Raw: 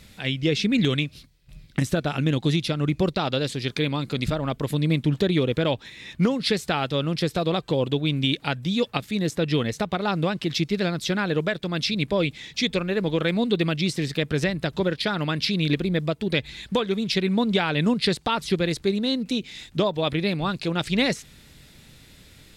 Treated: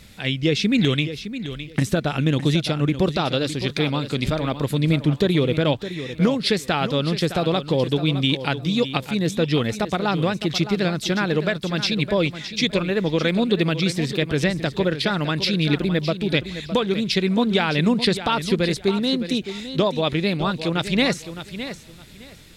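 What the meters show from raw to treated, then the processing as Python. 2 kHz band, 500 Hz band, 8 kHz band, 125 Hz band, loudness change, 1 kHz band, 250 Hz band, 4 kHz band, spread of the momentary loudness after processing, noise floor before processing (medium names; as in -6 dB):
+3.0 dB, +3.0 dB, +3.0 dB, +3.0 dB, +2.5 dB, +3.0 dB, +3.0 dB, +3.0 dB, 5 LU, -52 dBFS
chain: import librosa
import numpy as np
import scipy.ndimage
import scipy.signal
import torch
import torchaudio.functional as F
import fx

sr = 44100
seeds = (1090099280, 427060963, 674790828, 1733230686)

y = fx.echo_feedback(x, sr, ms=612, feedback_pct=21, wet_db=-11.5)
y = y * 10.0 ** (2.5 / 20.0)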